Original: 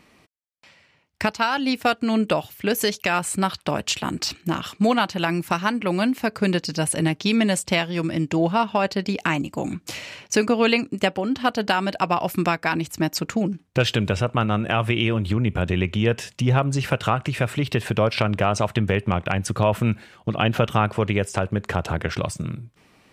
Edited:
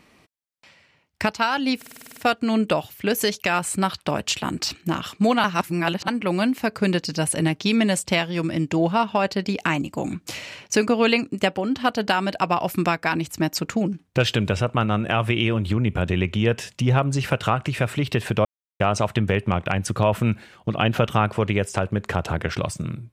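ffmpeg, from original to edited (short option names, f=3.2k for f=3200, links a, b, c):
-filter_complex "[0:a]asplit=13[a][b][c][d][e][f][g][h][i][j][k][l][m];[a]atrim=end=1.822[n];[b]atrim=start=1.768:end=1.822[o];[c]atrim=start=1.768:end=1.822[p];[d]atrim=start=1.768:end=1.822[q];[e]atrim=start=1.768:end=1.822[r];[f]atrim=start=1.768:end=1.822[s];[g]atrim=start=1.768:end=1.822[t];[h]atrim=start=1.768:end=1.822[u];[i]atrim=start=1.768:end=5.042[v];[j]atrim=start=5.038:end=5.682,asetpts=PTS-STARTPTS,areverse[w];[k]atrim=start=5.678:end=18.05,asetpts=PTS-STARTPTS,afade=t=out:st=12.368:d=0.004:c=hsin[x];[l]atrim=start=18.05:end=18.4,asetpts=PTS-STARTPTS,volume=0[y];[m]atrim=start=18.4,asetpts=PTS-STARTPTS,afade=t=in:d=0.004:c=hsin[z];[n][o]acrossfade=d=0.004:c1=hsin:c2=hsin[aa];[aa][p]acrossfade=d=0.004:c1=hsin:c2=hsin[ab];[ab][q]acrossfade=d=0.004:c1=hsin:c2=hsin[ac];[ac][r]acrossfade=d=0.004:c1=hsin:c2=hsin[ad];[ad][s]acrossfade=d=0.004:c1=hsin:c2=hsin[ae];[ae][t]acrossfade=d=0.004:c1=hsin:c2=hsin[af];[af][u]acrossfade=d=0.004:c1=hsin:c2=hsin[ag];[ag][v]acrossfade=d=0.004:c1=hsin:c2=hsin[ah];[ah][w]acrossfade=d=0.004:c1=hsin:c2=hsin[ai];[x][y][z]concat=n=3:v=0:a=1[aj];[ai][aj]acrossfade=d=0.004:c1=hsin:c2=hsin"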